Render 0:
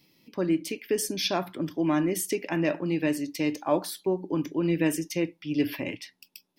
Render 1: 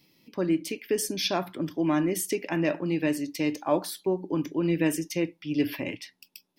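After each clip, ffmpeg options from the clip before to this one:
-af anull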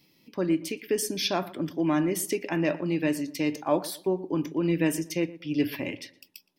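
-filter_complex "[0:a]asplit=2[a][b];[b]adelay=118,lowpass=f=1.8k:p=1,volume=-17dB,asplit=2[c][d];[d]adelay=118,lowpass=f=1.8k:p=1,volume=0.32,asplit=2[e][f];[f]adelay=118,lowpass=f=1.8k:p=1,volume=0.32[g];[a][c][e][g]amix=inputs=4:normalize=0"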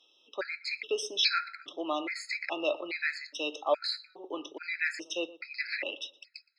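-af "highpass=f=460:w=0.5412,highpass=f=460:w=1.3066,equalizer=f=990:t=q:w=4:g=-7,equalizer=f=1.4k:t=q:w=4:g=9,equalizer=f=2.1k:t=q:w=4:g=6,equalizer=f=4k:t=q:w=4:g=8,lowpass=f=4.5k:w=0.5412,lowpass=f=4.5k:w=1.3066,crystalizer=i=2.5:c=0,afftfilt=real='re*gt(sin(2*PI*1.2*pts/sr)*(1-2*mod(floor(b*sr/1024/1300),2)),0)':imag='im*gt(sin(2*PI*1.2*pts/sr)*(1-2*mod(floor(b*sr/1024/1300),2)),0)':win_size=1024:overlap=0.75"

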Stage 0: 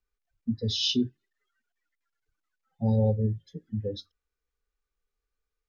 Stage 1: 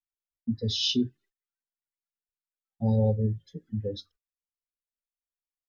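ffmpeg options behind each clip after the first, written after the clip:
-af "agate=range=-26dB:threshold=-58dB:ratio=16:detection=peak"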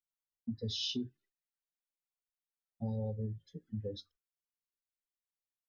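-af "acompressor=threshold=-26dB:ratio=6,volume=-7dB"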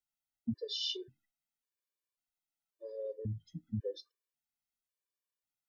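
-af "afftfilt=real='re*gt(sin(2*PI*0.92*pts/sr)*(1-2*mod(floor(b*sr/1024/310),2)),0)':imag='im*gt(sin(2*PI*0.92*pts/sr)*(1-2*mod(floor(b*sr/1024/310),2)),0)':win_size=1024:overlap=0.75,volume=3dB"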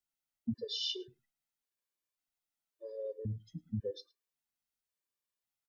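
-af "aecho=1:1:108:0.0668"

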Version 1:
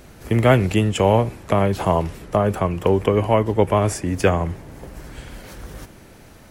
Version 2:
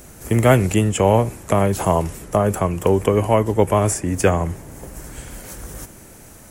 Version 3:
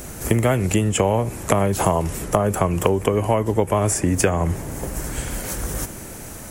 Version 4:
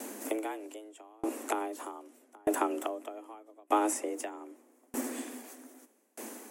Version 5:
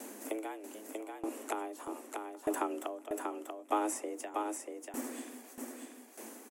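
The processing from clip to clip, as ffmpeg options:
-filter_complex "[0:a]acrossover=split=3700[a][b];[b]alimiter=level_in=0.5dB:limit=-24dB:level=0:latency=1:release=334,volume=-0.5dB[c];[a][c]amix=inputs=2:normalize=0,highshelf=f=5.6k:t=q:w=1.5:g=9,volume=1dB"
-af "acompressor=threshold=-22dB:ratio=10,volume=7.5dB"
-af "afreqshift=210,aeval=exprs='val(0)*pow(10,-35*if(lt(mod(0.81*n/s,1),2*abs(0.81)/1000),1-mod(0.81*n/s,1)/(2*abs(0.81)/1000),(mod(0.81*n/s,1)-2*abs(0.81)/1000)/(1-2*abs(0.81)/1000))/20)':c=same,volume=-5.5dB"
-af "aecho=1:1:638:0.596,volume=-4.5dB"

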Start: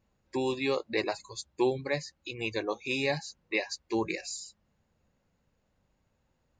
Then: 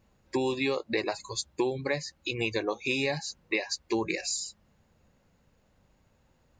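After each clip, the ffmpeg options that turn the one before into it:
-af "acompressor=threshold=-33dB:ratio=6,volume=7.5dB"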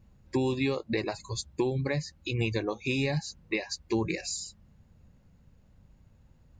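-af "bass=f=250:g=13,treble=f=4k:g=0,volume=-3dB"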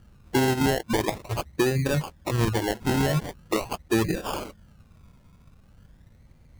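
-af "acrusher=samples=29:mix=1:aa=0.000001:lfo=1:lforange=17.4:lforate=0.43,volume=5.5dB"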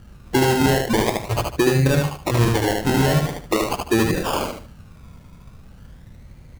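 -filter_complex "[0:a]asplit=2[a][b];[b]acompressor=threshold=-31dB:ratio=6,volume=2dB[c];[a][c]amix=inputs=2:normalize=0,aecho=1:1:75|150|225|300:0.668|0.18|0.0487|0.0132,volume=1.5dB"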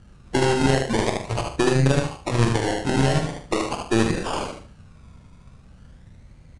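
-filter_complex "[0:a]aeval=exprs='0.562*(cos(1*acos(clip(val(0)/0.562,-1,1)))-cos(1*PI/2))+0.1*(cos(3*acos(clip(val(0)/0.562,-1,1)))-cos(3*PI/2))+0.0447*(cos(4*acos(clip(val(0)/0.562,-1,1)))-cos(4*PI/2))+0.0141*(cos(5*acos(clip(val(0)/0.562,-1,1)))-cos(5*PI/2))':c=same,asplit=2[a][b];[b]adelay=44,volume=-8.5dB[c];[a][c]amix=inputs=2:normalize=0,aresample=22050,aresample=44100"

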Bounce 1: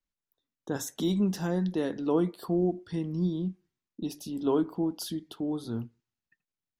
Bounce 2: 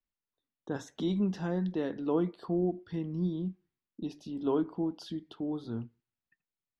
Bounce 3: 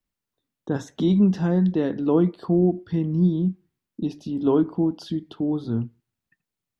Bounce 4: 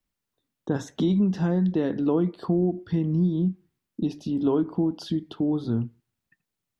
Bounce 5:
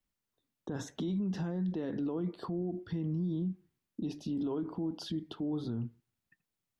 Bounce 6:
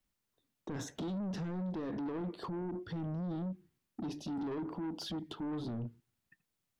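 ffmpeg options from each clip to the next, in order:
-af "lowpass=3.7k,volume=-3dB"
-af "equalizer=f=130:w=0.43:g=7,volume=6dB"
-af "acompressor=threshold=-22dB:ratio=3,volume=1.5dB"
-af "alimiter=limit=-24dB:level=0:latency=1:release=39,volume=-4dB"
-af "asoftclip=type=tanh:threshold=-37.5dB,volume=2.5dB"

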